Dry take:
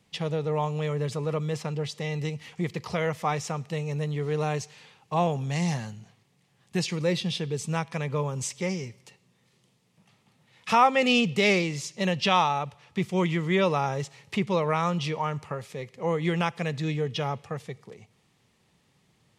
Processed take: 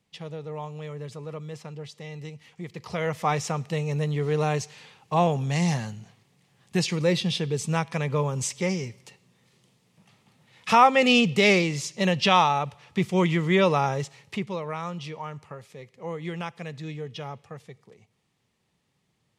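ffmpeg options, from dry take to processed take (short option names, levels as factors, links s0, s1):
-af "volume=1.41,afade=t=in:st=2.69:d=0.63:silence=0.281838,afade=t=out:st=13.84:d=0.73:silence=0.316228"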